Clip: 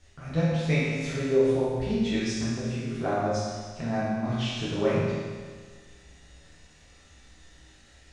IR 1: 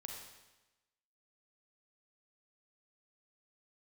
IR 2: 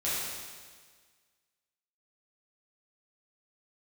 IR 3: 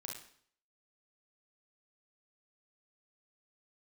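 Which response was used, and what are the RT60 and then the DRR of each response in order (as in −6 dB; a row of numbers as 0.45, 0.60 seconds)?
2; 1.1, 1.6, 0.60 seconds; 0.5, −10.0, −0.5 decibels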